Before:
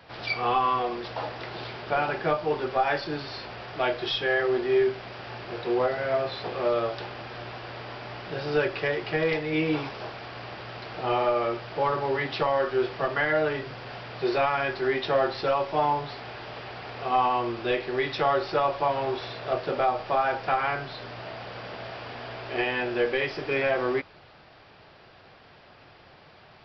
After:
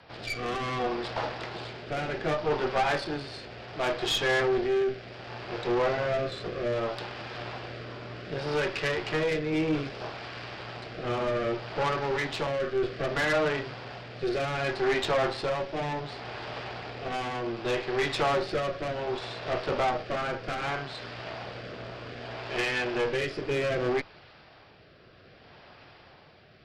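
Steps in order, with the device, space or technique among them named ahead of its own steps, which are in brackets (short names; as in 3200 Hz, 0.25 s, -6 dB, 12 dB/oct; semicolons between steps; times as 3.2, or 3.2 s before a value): overdriven rotary cabinet (tube stage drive 27 dB, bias 0.75; rotary speaker horn 0.65 Hz); gain +6 dB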